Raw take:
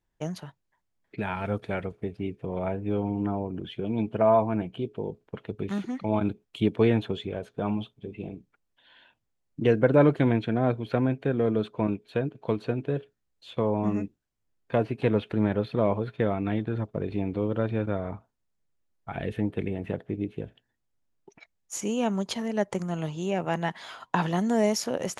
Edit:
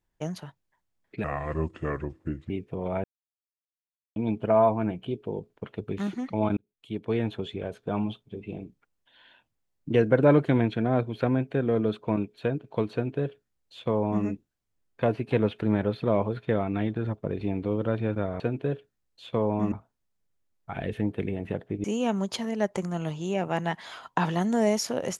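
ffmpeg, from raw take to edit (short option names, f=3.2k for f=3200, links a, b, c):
-filter_complex "[0:a]asplit=9[a][b][c][d][e][f][g][h][i];[a]atrim=end=1.244[j];[b]atrim=start=1.24:end=2.21,asetpts=PTS-STARTPTS,asetrate=33957,aresample=44100[k];[c]atrim=start=2.206:end=2.75,asetpts=PTS-STARTPTS,afade=t=out:st=0.54:d=0.004:c=hsin[l];[d]atrim=start=2.75:end=3.87,asetpts=PTS-STARTPTS,volume=0[m];[e]atrim=start=3.87:end=6.28,asetpts=PTS-STARTPTS,afade=t=in:d=0.004:c=hsin,afade=t=out:st=2.406:d=0.004:c=hsin[n];[f]atrim=start=6.28:end=18.112,asetpts=PTS-STARTPTS,afade=t=in:d=1.11[o];[g]atrim=start=12.638:end=13.962[p];[h]atrim=start=18.108:end=20.232[q];[i]atrim=start=21.808[r];[j][k]acrossfade=d=0.004:c1=hsin:c2=hsin[s];[l][m][n][o]concat=n=4:v=0:a=1[t];[s][t]acrossfade=d=0.004:c1=hsin:c2=hsin[u];[u][p]acrossfade=d=0.004:c1=hsin:c2=hsin[v];[v][q]acrossfade=d=0.004:c1=hsin:c2=hsin[w];[w][r]acrossfade=d=0.004:c1=hsin:c2=hsin"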